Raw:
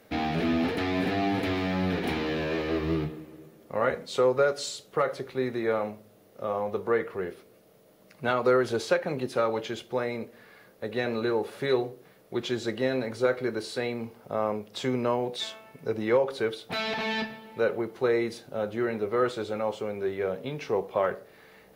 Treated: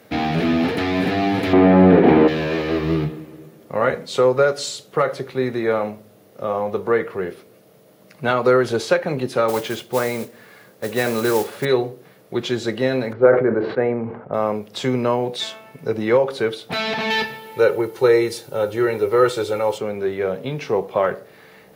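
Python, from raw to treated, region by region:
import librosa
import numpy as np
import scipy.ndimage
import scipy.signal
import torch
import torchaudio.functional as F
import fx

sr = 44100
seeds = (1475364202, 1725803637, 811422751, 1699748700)

y = fx.chain(x, sr, fx.lowpass(hz=2300.0, slope=12),
    fx.peak_eq(hz=430.0, db=12.5, octaves=2.9), at=(1.53, 2.28))
y = fx.chain(y, sr, fx.dynamic_eq(hz=1200.0, q=0.7, threshold_db=-40.0, ratio=4.0, max_db=3),
    fx.mod_noise(seeds[0], snr_db=14), at=(9.48, 11.65))
y = fx.chain(y, sr, fx.lowpass(hz=1900.0, slope=24),
    fx.dynamic_eq(hz=540.0, q=0.86, threshold_db=-36.0, ratio=4.0, max_db=5),
    fx.sustainer(db_per_s=79.0), at=(13.13, 14.34))
y = fx.chain(y, sr, fx.high_shelf(hz=6700.0, db=11.0),
    fx.comb(ms=2.2, depth=0.58), at=(17.1, 19.78))
y = scipy.signal.sosfilt(scipy.signal.butter(2, 78.0, 'highpass', fs=sr, output='sos'), y)
y = fx.peak_eq(y, sr, hz=140.0, db=3.5, octaves=0.61)
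y = y * librosa.db_to_amplitude(7.0)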